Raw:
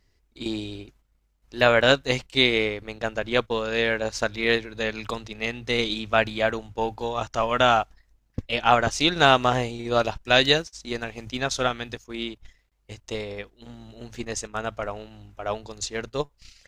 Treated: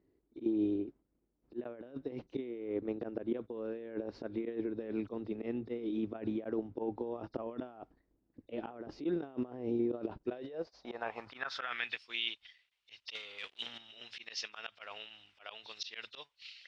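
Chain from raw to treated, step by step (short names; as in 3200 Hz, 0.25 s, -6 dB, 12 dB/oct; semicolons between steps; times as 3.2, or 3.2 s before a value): nonlinear frequency compression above 3500 Hz 1.5:1; 13.15–13.78 sample leveller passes 3; auto swell 0.132 s; negative-ratio compressor -33 dBFS, ratio -1; band-pass sweep 320 Hz -> 3000 Hz, 10.18–12.11; gain +1.5 dB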